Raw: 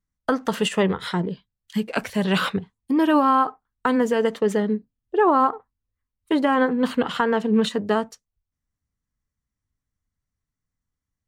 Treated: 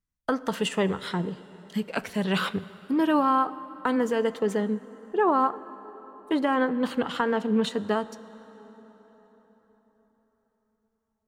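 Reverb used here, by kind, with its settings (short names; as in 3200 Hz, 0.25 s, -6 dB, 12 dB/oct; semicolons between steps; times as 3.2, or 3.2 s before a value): plate-style reverb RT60 4.7 s, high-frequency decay 0.65×, DRR 16 dB; gain -4.5 dB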